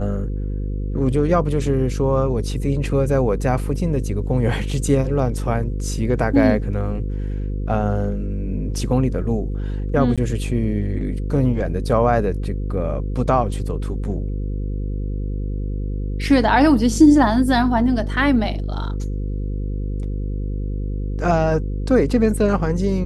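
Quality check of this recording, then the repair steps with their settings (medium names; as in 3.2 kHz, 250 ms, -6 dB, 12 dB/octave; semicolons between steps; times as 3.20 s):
buzz 50 Hz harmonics 10 -24 dBFS
10.16–10.18 s: dropout 16 ms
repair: de-hum 50 Hz, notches 10; interpolate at 10.16 s, 16 ms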